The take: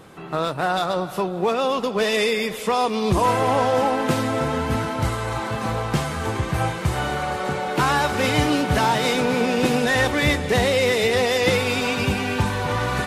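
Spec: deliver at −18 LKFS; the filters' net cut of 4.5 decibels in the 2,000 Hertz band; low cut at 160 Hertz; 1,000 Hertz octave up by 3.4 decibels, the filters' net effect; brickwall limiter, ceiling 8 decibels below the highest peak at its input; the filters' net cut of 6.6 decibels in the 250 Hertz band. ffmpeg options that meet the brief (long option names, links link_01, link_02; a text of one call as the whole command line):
ffmpeg -i in.wav -af "highpass=160,equalizer=frequency=250:width_type=o:gain=-7.5,equalizer=frequency=1000:width_type=o:gain=6.5,equalizer=frequency=2000:width_type=o:gain=-8,volume=6dB,alimiter=limit=-8.5dB:level=0:latency=1" out.wav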